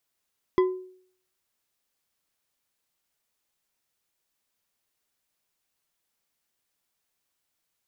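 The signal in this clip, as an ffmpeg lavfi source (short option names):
-f lavfi -i "aevalsrc='0.178*pow(10,-3*t/0.58)*sin(2*PI*370*t)+0.0668*pow(10,-3*t/0.285)*sin(2*PI*1020.1*t)+0.0251*pow(10,-3*t/0.178)*sin(2*PI*1999.5*t)+0.00944*pow(10,-3*t/0.125)*sin(2*PI*3305.2*t)+0.00355*pow(10,-3*t/0.095)*sin(2*PI*4935.8*t)':d=0.89:s=44100"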